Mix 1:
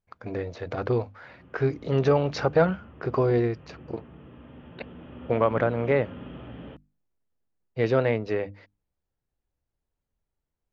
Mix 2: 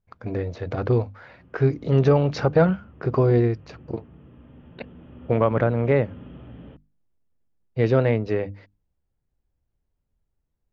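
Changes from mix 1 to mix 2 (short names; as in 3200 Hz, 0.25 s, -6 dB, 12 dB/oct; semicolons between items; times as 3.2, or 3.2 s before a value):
background -6.5 dB; master: add low shelf 290 Hz +8.5 dB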